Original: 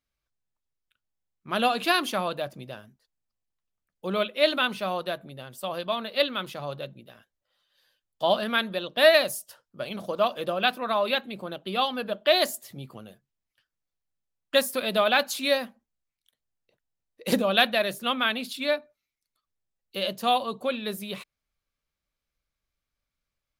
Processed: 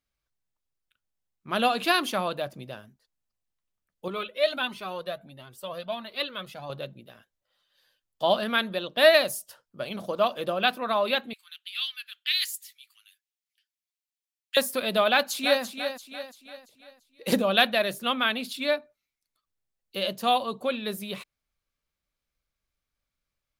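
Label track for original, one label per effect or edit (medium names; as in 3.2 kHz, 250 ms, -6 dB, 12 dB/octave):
4.080000	6.700000	Shepard-style flanger rising 1.5 Hz
11.330000	14.570000	inverse Chebyshev high-pass stop band from 610 Hz, stop band 60 dB
15.090000	15.630000	echo throw 340 ms, feedback 45%, level -8.5 dB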